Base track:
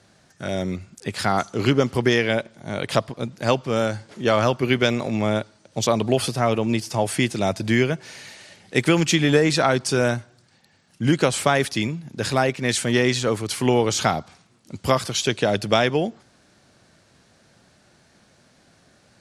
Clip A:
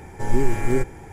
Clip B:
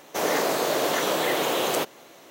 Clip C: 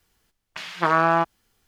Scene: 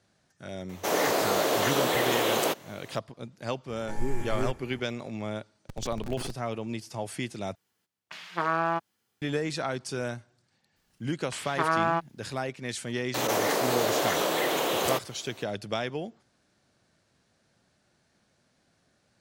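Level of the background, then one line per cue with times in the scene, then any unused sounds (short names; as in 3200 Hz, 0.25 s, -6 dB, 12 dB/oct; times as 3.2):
base track -12.5 dB
0.69 add B -1.5 dB
3.68 add A -10 dB
5.49 add A -17 dB + Schmitt trigger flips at -23 dBFS
7.55 replace with C -8 dB + HPF 110 Hz 24 dB/oct
10.76 add C -6.5 dB
13.14 add B -3 dB + backwards sustainer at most 20 dB/s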